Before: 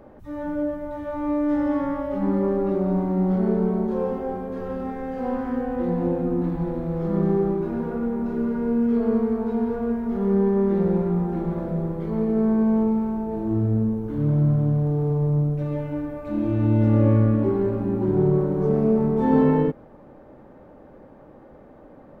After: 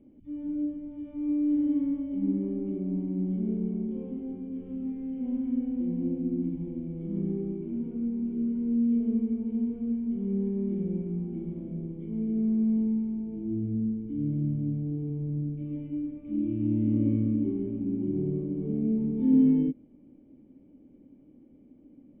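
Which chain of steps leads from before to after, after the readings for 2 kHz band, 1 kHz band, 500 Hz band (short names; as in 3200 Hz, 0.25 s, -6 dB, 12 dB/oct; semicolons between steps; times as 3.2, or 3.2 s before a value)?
under -20 dB, under -25 dB, -15.0 dB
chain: vocal tract filter i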